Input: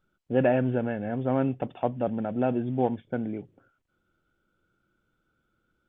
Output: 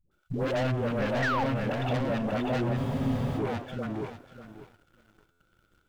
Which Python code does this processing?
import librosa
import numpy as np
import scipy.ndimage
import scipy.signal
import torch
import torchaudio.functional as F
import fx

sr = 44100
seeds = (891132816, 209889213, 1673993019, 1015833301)

p1 = fx.over_compress(x, sr, threshold_db=-33.0, ratio=-1.0)
p2 = x + F.gain(torch.from_numpy(p1), 1.0).numpy()
p3 = 10.0 ** (-27.0 / 20.0) * np.tanh(p2 / 10.0 ** (-27.0 / 20.0))
p4 = fx.peak_eq(p3, sr, hz=220.0, db=-7.5, octaves=1.0)
p5 = fx.dispersion(p4, sr, late='highs', ms=114.0, hz=440.0)
p6 = p5 + fx.echo_feedback(p5, sr, ms=591, feedback_pct=23, wet_db=-4.5, dry=0)
p7 = fx.spec_paint(p6, sr, seeds[0], shape='fall', start_s=1.22, length_s=0.22, low_hz=740.0, high_hz=2000.0, level_db=-30.0)
p8 = fx.leveller(p7, sr, passes=2)
p9 = fx.peak_eq(p8, sr, hz=990.0, db=-3.0, octaves=2.9)
p10 = fx.buffer_glitch(p9, sr, at_s=(2.79, 5.31), block=512, repeats=7)
y = fx.spec_freeze(p10, sr, seeds[1], at_s=2.79, hold_s=0.6)